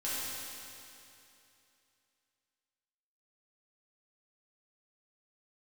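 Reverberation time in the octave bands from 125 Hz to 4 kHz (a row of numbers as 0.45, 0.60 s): 2.8, 2.8, 2.8, 2.8, 2.8, 2.7 s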